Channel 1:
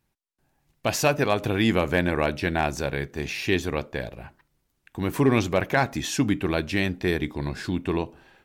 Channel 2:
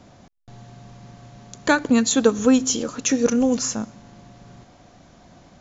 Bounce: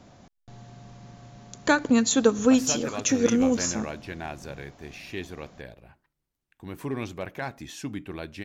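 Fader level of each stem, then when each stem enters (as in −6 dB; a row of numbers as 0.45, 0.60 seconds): −11.5, −3.0 decibels; 1.65, 0.00 seconds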